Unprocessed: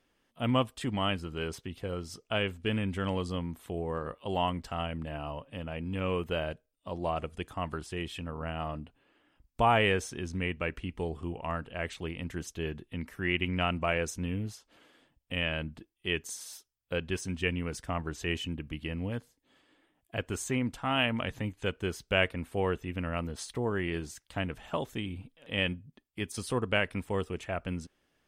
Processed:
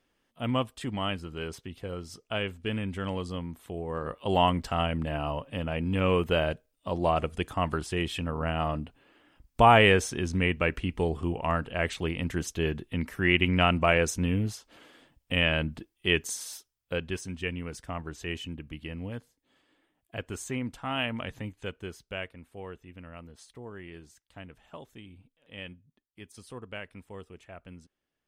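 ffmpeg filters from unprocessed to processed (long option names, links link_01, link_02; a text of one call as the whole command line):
ffmpeg -i in.wav -af "volume=6.5dB,afade=type=in:start_time=3.87:duration=0.46:silence=0.421697,afade=type=out:start_time=16.14:duration=1.16:silence=0.354813,afade=type=out:start_time=21.37:duration=0.94:silence=0.334965" out.wav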